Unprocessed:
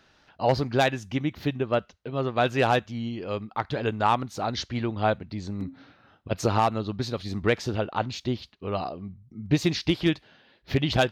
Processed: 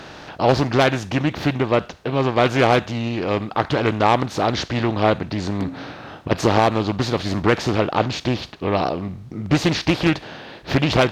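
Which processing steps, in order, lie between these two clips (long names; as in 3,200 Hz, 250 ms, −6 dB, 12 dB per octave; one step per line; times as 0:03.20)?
compressor on every frequency bin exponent 0.6
highs frequency-modulated by the lows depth 0.44 ms
level +3 dB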